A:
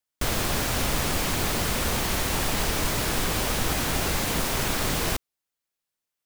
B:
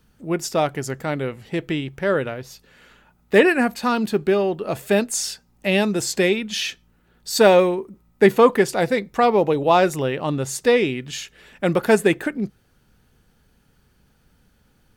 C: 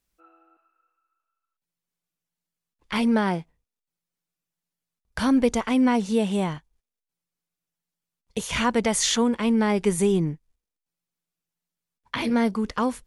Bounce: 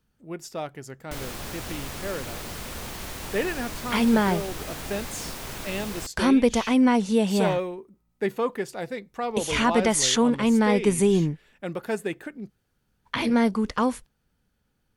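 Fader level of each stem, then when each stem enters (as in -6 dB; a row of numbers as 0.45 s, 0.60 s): -10.0 dB, -12.5 dB, +1.0 dB; 0.90 s, 0.00 s, 1.00 s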